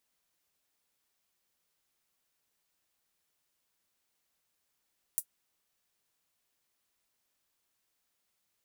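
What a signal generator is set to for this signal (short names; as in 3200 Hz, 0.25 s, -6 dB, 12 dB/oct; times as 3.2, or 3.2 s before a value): closed hi-hat, high-pass 9300 Hz, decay 0.08 s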